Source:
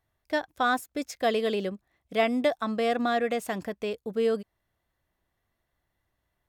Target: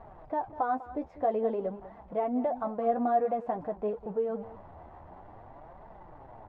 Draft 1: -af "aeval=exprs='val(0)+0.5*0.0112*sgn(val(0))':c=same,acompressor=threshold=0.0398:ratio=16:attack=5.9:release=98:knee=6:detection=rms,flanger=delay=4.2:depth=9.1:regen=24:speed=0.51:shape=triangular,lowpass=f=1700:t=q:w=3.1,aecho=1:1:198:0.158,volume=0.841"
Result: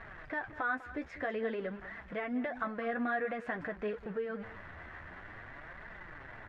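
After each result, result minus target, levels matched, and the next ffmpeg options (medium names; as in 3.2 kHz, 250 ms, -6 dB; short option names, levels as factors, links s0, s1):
2 kHz band +19.5 dB; compression: peak gain reduction +6 dB
-af "aeval=exprs='val(0)+0.5*0.0112*sgn(val(0))':c=same,acompressor=threshold=0.0398:ratio=16:attack=5.9:release=98:knee=6:detection=rms,flanger=delay=4.2:depth=9.1:regen=24:speed=0.51:shape=triangular,lowpass=f=840:t=q:w=3.1,aecho=1:1:198:0.158,volume=0.841"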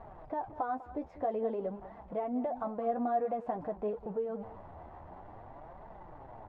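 compression: peak gain reduction +6 dB
-af "aeval=exprs='val(0)+0.5*0.0112*sgn(val(0))':c=same,acompressor=threshold=0.0841:ratio=16:attack=5.9:release=98:knee=6:detection=rms,flanger=delay=4.2:depth=9.1:regen=24:speed=0.51:shape=triangular,lowpass=f=840:t=q:w=3.1,aecho=1:1:198:0.158,volume=0.841"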